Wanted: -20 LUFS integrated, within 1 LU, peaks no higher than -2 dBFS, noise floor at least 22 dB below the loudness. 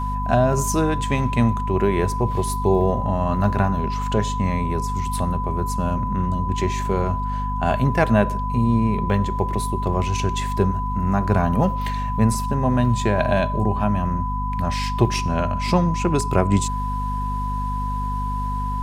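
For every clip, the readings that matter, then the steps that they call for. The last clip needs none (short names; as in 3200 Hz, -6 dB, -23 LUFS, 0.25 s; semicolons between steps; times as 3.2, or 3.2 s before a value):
hum 50 Hz; harmonics up to 250 Hz; hum level -23 dBFS; steady tone 1000 Hz; tone level -26 dBFS; loudness -22.0 LUFS; peak -2.0 dBFS; loudness target -20.0 LUFS
-> de-hum 50 Hz, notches 5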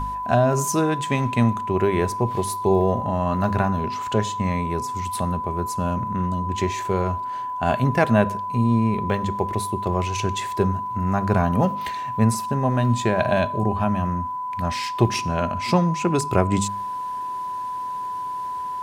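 hum none; steady tone 1000 Hz; tone level -26 dBFS
-> notch 1000 Hz, Q 30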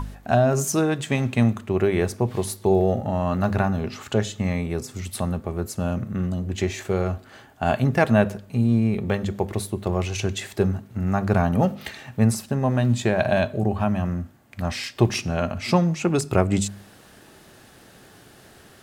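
steady tone none; loudness -23.5 LUFS; peak -3.0 dBFS; loudness target -20.0 LUFS
-> gain +3.5 dB; limiter -2 dBFS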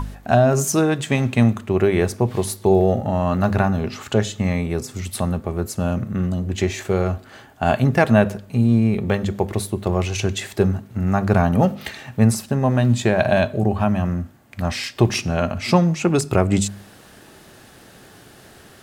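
loudness -20.0 LUFS; peak -2.0 dBFS; noise floor -47 dBFS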